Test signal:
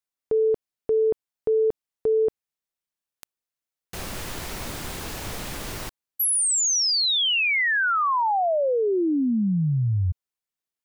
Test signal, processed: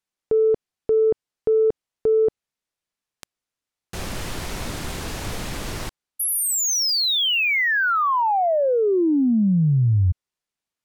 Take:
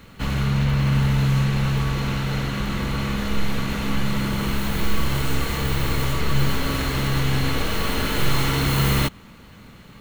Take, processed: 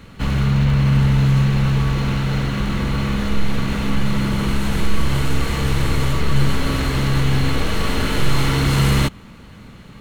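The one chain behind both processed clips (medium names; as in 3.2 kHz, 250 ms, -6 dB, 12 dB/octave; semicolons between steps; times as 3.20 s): bass shelf 340 Hz +3.5 dB; in parallel at -11 dB: saturation -16.5 dBFS; on the sum: decimation joined by straight lines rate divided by 2×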